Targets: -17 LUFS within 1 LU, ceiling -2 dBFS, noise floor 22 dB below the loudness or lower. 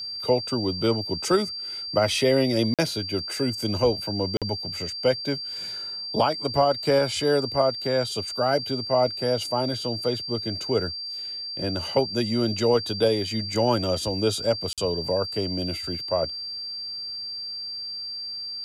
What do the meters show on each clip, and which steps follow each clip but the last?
dropouts 3; longest dropout 47 ms; steady tone 4.7 kHz; tone level -31 dBFS; loudness -25.0 LUFS; peak level -10.0 dBFS; loudness target -17.0 LUFS
-> interpolate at 2.74/4.37/14.73 s, 47 ms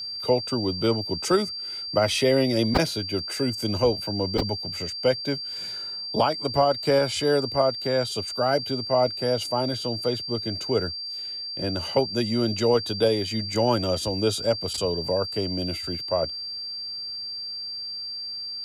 dropouts 0; steady tone 4.7 kHz; tone level -31 dBFS
-> band-stop 4.7 kHz, Q 30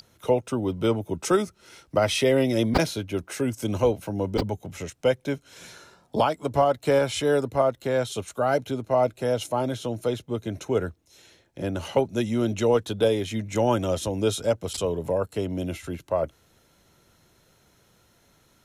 steady tone not found; loudness -25.5 LUFS; peak level -6.5 dBFS; loudness target -17.0 LUFS
-> trim +8.5 dB; peak limiter -2 dBFS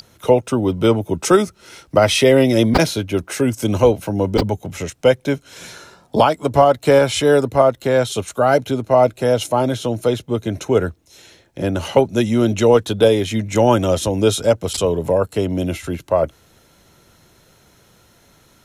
loudness -17.5 LUFS; peak level -2.0 dBFS; noise floor -54 dBFS

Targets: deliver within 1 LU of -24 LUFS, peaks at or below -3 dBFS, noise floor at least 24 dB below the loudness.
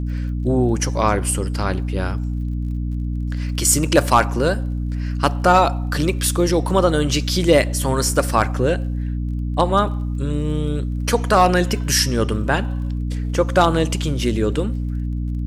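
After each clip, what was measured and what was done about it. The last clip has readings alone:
tick rate 29 per s; hum 60 Hz; highest harmonic 300 Hz; hum level -21 dBFS; loudness -19.5 LUFS; peak level -2.5 dBFS; loudness target -24.0 LUFS
-> de-click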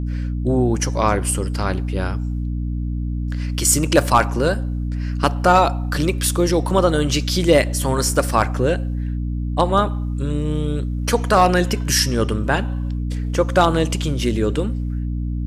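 tick rate 0.26 per s; hum 60 Hz; highest harmonic 300 Hz; hum level -21 dBFS
-> de-hum 60 Hz, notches 5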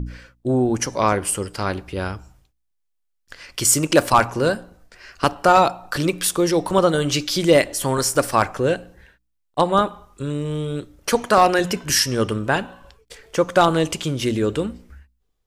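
hum not found; loudness -20.0 LUFS; peak level -2.0 dBFS; loudness target -24.0 LUFS
-> trim -4 dB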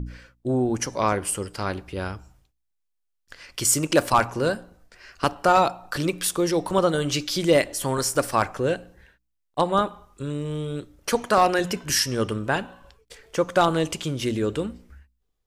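loudness -24.0 LUFS; peak level -6.0 dBFS; noise floor -75 dBFS

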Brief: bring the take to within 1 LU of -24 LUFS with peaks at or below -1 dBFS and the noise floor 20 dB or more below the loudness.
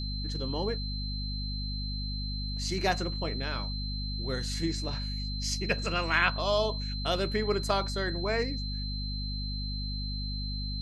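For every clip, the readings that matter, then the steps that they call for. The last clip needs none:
hum 50 Hz; highest harmonic 250 Hz; hum level -32 dBFS; steady tone 4.1 kHz; tone level -38 dBFS; loudness -31.5 LUFS; peak level -10.5 dBFS; loudness target -24.0 LUFS
-> hum notches 50/100/150/200/250 Hz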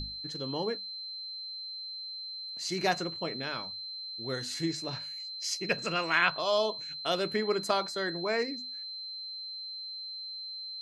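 hum not found; steady tone 4.1 kHz; tone level -38 dBFS
-> band-stop 4.1 kHz, Q 30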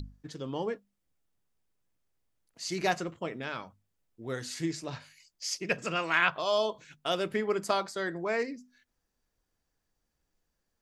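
steady tone not found; loudness -32.0 LUFS; peak level -10.5 dBFS; loudness target -24.0 LUFS
-> trim +8 dB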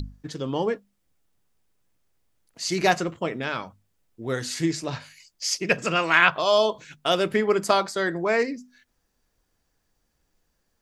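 loudness -24.0 LUFS; peak level -2.5 dBFS; noise floor -74 dBFS

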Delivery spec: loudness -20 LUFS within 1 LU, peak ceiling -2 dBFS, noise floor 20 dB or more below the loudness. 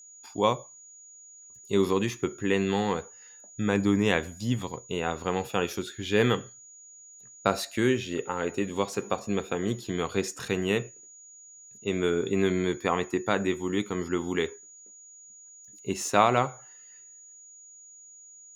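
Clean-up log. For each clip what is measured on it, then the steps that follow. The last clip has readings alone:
steady tone 6.8 kHz; tone level -48 dBFS; loudness -28.0 LUFS; peak level -6.0 dBFS; loudness target -20.0 LUFS
-> band-stop 6.8 kHz, Q 30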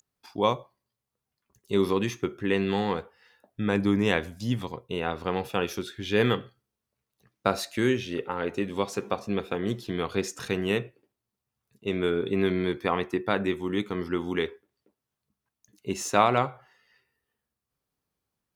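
steady tone not found; loudness -28.0 LUFS; peak level -6.5 dBFS; loudness target -20.0 LUFS
-> trim +8 dB; peak limiter -2 dBFS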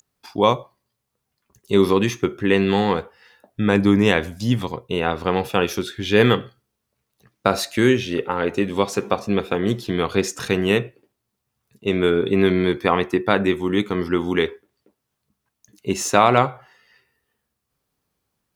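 loudness -20.5 LUFS; peak level -2.0 dBFS; noise floor -78 dBFS

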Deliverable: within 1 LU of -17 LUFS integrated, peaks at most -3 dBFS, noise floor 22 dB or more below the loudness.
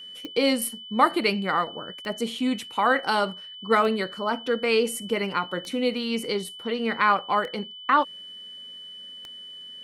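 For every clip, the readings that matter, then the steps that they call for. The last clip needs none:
clicks found 6; steady tone 3 kHz; tone level -39 dBFS; loudness -25.0 LUFS; peak level -6.0 dBFS; loudness target -17.0 LUFS
-> de-click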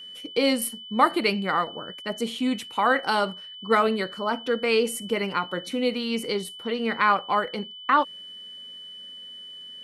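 clicks found 0; steady tone 3 kHz; tone level -39 dBFS
-> band-stop 3 kHz, Q 30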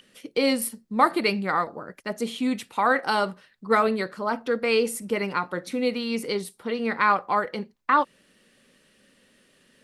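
steady tone not found; loudness -25.5 LUFS; peak level -6.5 dBFS; loudness target -17.0 LUFS
-> trim +8.5 dB; peak limiter -3 dBFS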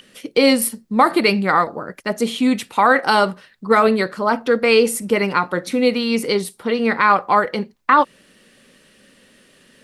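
loudness -17.5 LUFS; peak level -3.0 dBFS; noise floor -54 dBFS

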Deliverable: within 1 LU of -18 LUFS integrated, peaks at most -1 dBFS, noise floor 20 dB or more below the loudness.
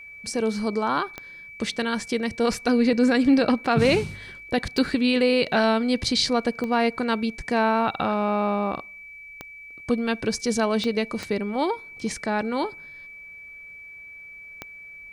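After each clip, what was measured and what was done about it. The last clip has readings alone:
clicks found 7; steady tone 2.3 kHz; tone level -40 dBFS; loudness -23.5 LUFS; peak level -7.5 dBFS; loudness target -18.0 LUFS
-> de-click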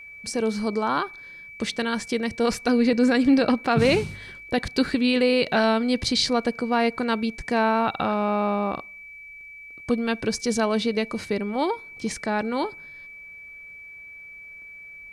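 clicks found 0; steady tone 2.3 kHz; tone level -40 dBFS
-> band-stop 2.3 kHz, Q 30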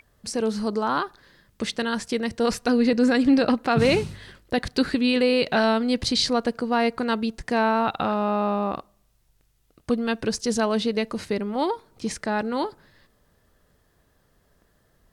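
steady tone not found; loudness -24.0 LUFS; peak level -7.5 dBFS; loudness target -18.0 LUFS
-> trim +6 dB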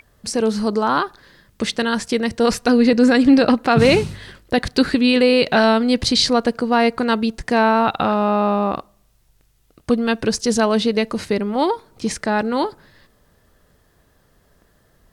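loudness -18.0 LUFS; peak level -1.5 dBFS; noise floor -59 dBFS

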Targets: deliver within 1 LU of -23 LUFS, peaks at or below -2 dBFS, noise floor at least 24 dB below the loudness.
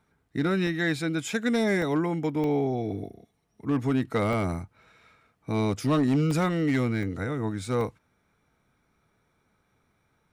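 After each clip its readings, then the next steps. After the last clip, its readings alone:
clipped samples 0.8%; clipping level -18.0 dBFS; dropouts 7; longest dropout 1.1 ms; loudness -27.0 LUFS; peak level -18.0 dBFS; loudness target -23.0 LUFS
-> clip repair -18 dBFS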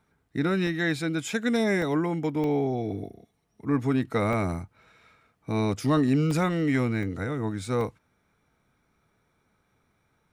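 clipped samples 0.0%; dropouts 7; longest dropout 1.1 ms
-> interpolate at 0.67/1.82/2.44/4.33/6.31/7.03/7.81 s, 1.1 ms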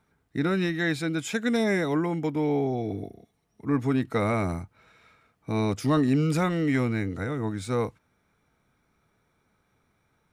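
dropouts 0; loudness -27.0 LUFS; peak level -12.5 dBFS; loudness target -23.0 LUFS
-> trim +4 dB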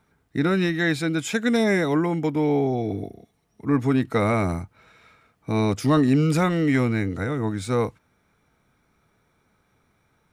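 loudness -23.0 LUFS; peak level -8.5 dBFS; noise floor -67 dBFS

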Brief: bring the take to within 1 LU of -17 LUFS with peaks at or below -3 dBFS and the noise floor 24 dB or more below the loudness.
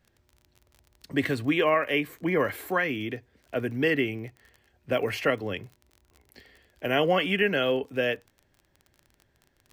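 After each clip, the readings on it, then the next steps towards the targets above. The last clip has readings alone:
tick rate 29 per s; loudness -27.0 LUFS; peak level -12.0 dBFS; loudness target -17.0 LUFS
-> de-click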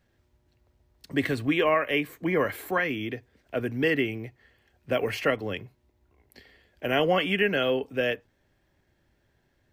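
tick rate 0.31 per s; loudness -27.0 LUFS; peak level -12.0 dBFS; loudness target -17.0 LUFS
-> trim +10 dB; peak limiter -3 dBFS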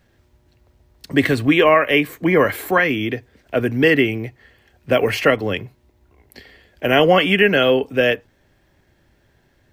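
loudness -17.0 LUFS; peak level -3.0 dBFS; noise floor -60 dBFS

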